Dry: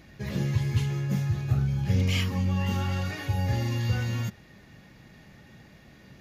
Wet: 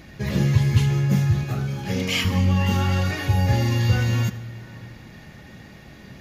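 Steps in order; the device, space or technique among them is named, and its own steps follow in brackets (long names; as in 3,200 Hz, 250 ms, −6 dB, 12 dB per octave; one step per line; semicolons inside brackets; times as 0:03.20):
0:01.43–0:02.25: high-pass filter 220 Hz 12 dB per octave
compressed reverb return (on a send at −7 dB: convolution reverb RT60 2.0 s, pre-delay 71 ms + downward compressor, threshold −33 dBFS, peak gain reduction 13 dB)
on the sum: level +7.5 dB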